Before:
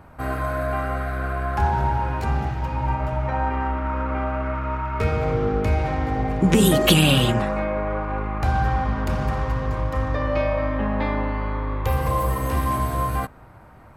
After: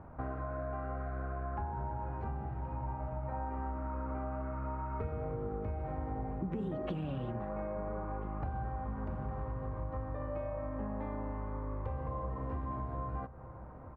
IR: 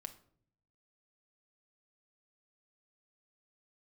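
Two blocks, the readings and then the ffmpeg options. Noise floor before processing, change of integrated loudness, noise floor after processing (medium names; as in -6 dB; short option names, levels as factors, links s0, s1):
-46 dBFS, -16.5 dB, -48 dBFS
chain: -filter_complex "[0:a]lowpass=1100,acompressor=threshold=0.0251:ratio=6,asplit=2[s0][s1];[s1]adelay=1341,volume=0.2,highshelf=f=4000:g=-30.2[s2];[s0][s2]amix=inputs=2:normalize=0,volume=0.668"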